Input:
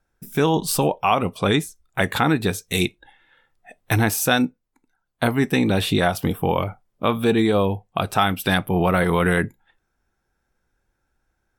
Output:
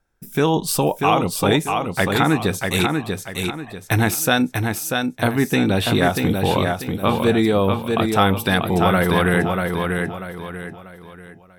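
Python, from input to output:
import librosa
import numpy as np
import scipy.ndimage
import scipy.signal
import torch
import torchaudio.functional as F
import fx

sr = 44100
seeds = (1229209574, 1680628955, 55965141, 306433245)

y = fx.echo_feedback(x, sr, ms=640, feedback_pct=35, wet_db=-4.5)
y = y * 10.0 ** (1.0 / 20.0)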